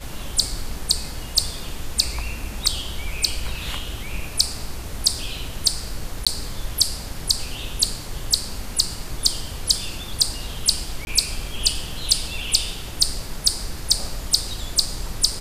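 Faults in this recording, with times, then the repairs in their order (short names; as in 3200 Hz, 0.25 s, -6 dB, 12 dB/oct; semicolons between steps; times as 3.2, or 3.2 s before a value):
6.25–6.27 gap 16 ms
11.05–11.07 gap 21 ms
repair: interpolate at 6.25, 16 ms; interpolate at 11.05, 21 ms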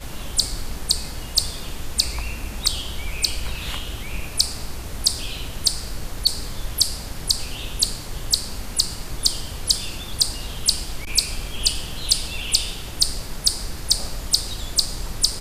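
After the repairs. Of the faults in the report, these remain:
none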